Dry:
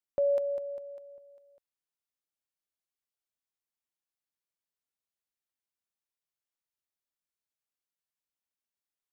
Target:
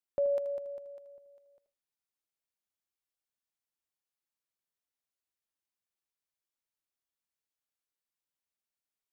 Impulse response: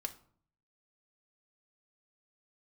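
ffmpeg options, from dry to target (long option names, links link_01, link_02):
-filter_complex "[0:a]asplit=2[link_01][link_02];[1:a]atrim=start_sample=2205,atrim=end_sample=6174,adelay=79[link_03];[link_02][link_03]afir=irnorm=-1:irlink=0,volume=-10.5dB[link_04];[link_01][link_04]amix=inputs=2:normalize=0,volume=-2dB"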